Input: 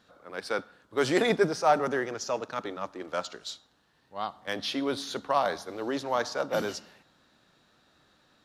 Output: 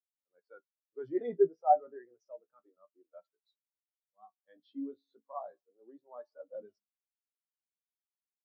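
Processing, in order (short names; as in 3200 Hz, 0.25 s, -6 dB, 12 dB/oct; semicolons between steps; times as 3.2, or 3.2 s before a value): flange 0.3 Hz, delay 9.1 ms, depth 10 ms, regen +41%; spectral expander 2.5:1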